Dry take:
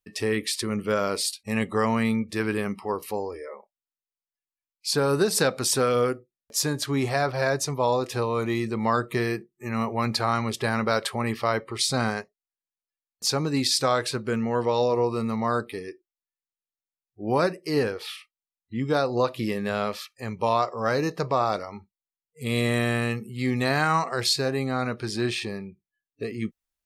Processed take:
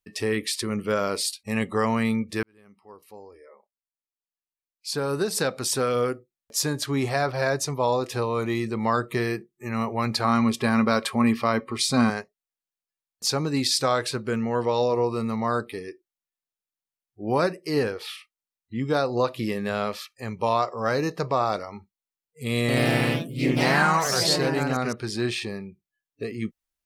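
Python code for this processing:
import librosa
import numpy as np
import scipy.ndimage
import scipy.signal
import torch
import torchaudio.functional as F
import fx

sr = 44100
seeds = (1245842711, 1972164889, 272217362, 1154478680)

y = fx.small_body(x, sr, hz=(240.0, 1100.0, 2400.0), ring_ms=90, db=12, at=(10.24, 12.1))
y = fx.echo_pitch(y, sr, ms=84, semitones=2, count=3, db_per_echo=-3.0, at=(22.6, 25.12))
y = fx.edit(y, sr, fx.fade_in_span(start_s=2.43, length_s=4.17), tone=tone)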